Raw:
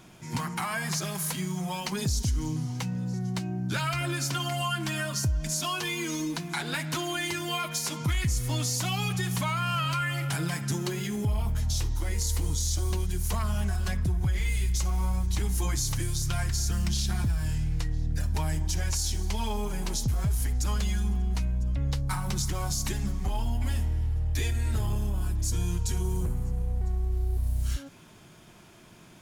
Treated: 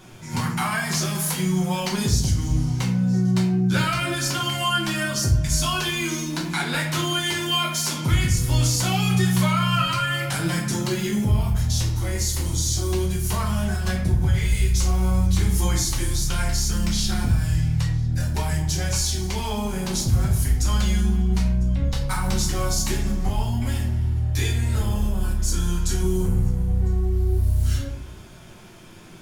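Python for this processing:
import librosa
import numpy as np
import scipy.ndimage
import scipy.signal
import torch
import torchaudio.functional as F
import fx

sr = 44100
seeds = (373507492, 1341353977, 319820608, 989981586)

y = fx.peak_eq(x, sr, hz=1400.0, db=8.0, octaves=0.36, at=(25.34, 25.96))
y = fx.room_shoebox(y, sr, seeds[0], volume_m3=78.0, walls='mixed', distance_m=1.0)
y = y * librosa.db_to_amplitude(2.5)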